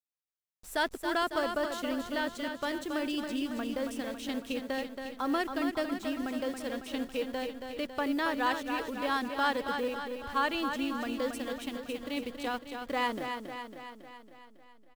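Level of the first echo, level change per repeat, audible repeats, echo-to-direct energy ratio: −6.5 dB, −4.5 dB, 7, −4.5 dB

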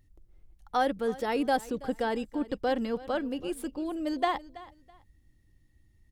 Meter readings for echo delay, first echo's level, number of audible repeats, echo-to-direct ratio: 328 ms, −18.5 dB, 2, −18.0 dB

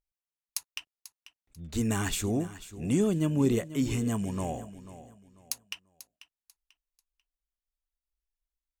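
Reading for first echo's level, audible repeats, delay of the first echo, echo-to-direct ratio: −15.0 dB, 2, 491 ms, −14.5 dB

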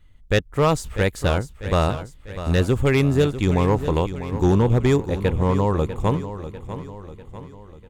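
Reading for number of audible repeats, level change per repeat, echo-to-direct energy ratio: 4, −6.0 dB, −11.0 dB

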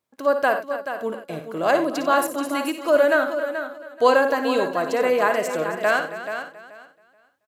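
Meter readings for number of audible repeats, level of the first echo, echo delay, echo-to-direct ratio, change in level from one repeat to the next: 9, −10.0 dB, 56 ms, −4.5 dB, repeats not evenly spaced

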